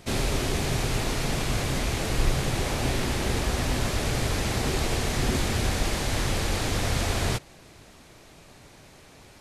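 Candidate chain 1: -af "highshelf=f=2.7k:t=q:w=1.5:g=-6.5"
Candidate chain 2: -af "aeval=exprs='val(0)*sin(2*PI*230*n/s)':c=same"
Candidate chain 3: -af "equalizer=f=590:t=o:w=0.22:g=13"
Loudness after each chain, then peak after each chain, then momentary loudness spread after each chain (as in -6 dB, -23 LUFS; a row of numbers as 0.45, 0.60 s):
-28.0, -29.0, -26.0 LUFS; -10.0, -10.0, -9.5 dBFS; 2, 2, 1 LU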